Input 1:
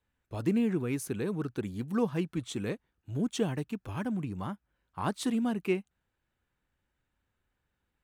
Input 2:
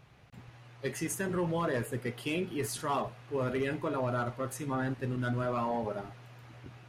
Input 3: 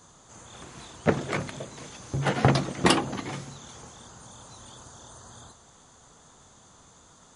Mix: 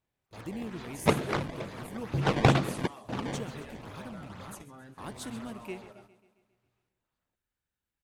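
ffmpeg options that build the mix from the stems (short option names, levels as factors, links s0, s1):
-filter_complex "[0:a]volume=0.266,asplit=3[s0][s1][s2];[s1]volume=0.178[s3];[1:a]agate=range=0.1:threshold=0.01:ratio=16:detection=peak,alimiter=level_in=2.24:limit=0.0631:level=0:latency=1:release=183,volume=0.447,volume=0.251,asplit=2[s4][s5];[s5]volume=0.141[s6];[2:a]acrusher=samples=19:mix=1:aa=0.000001:lfo=1:lforange=30.4:lforate=2.2,lowpass=2800,volume=0.891[s7];[s2]apad=whole_len=324264[s8];[s7][s8]sidechaingate=range=0.0224:threshold=0.00126:ratio=16:detection=peak[s9];[s3][s6]amix=inputs=2:normalize=0,aecho=0:1:135|270|405|540|675|810|945|1080|1215:1|0.58|0.336|0.195|0.113|0.0656|0.0381|0.0221|0.0128[s10];[s0][s4][s9][s10]amix=inputs=4:normalize=0,highshelf=f=3600:g=10"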